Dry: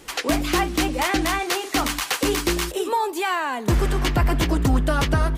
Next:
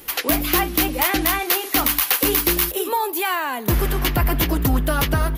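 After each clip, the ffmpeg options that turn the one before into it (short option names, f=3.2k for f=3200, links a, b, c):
-af "equalizer=f=3k:t=o:w=1.7:g=2.5,aexciter=amount=6:drive=8.1:freq=11k"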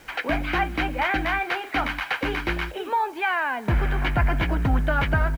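-af "lowpass=f=2k:t=q:w=1.6,acrusher=bits=7:mix=0:aa=0.000001,aecho=1:1:1.3:0.36,volume=-4dB"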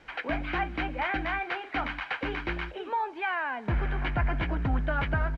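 -af "lowpass=3.8k,volume=-6dB"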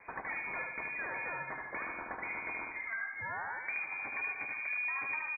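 -filter_complex "[0:a]acompressor=threshold=-38dB:ratio=6,asplit=2[a][b];[b]aecho=0:1:75|150|225|300|375|450:0.631|0.297|0.139|0.0655|0.0308|0.0145[c];[a][c]amix=inputs=2:normalize=0,lowpass=f=2.1k:t=q:w=0.5098,lowpass=f=2.1k:t=q:w=0.6013,lowpass=f=2.1k:t=q:w=0.9,lowpass=f=2.1k:t=q:w=2.563,afreqshift=-2500"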